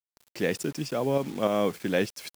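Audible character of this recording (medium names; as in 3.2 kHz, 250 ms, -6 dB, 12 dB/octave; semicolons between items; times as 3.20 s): tremolo saw up 3.4 Hz, depth 50%; a quantiser's noise floor 8-bit, dither none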